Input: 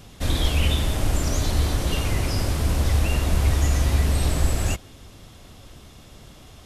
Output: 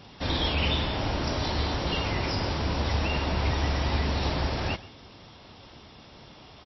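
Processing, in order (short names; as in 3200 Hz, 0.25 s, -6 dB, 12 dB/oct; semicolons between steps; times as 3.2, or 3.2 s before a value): HPF 160 Hz 6 dB/oct; bell 900 Hz +6.5 dB 0.26 oct; on a send: echo 0.125 s -20 dB; on the sum: MP3 24 kbps 16000 Hz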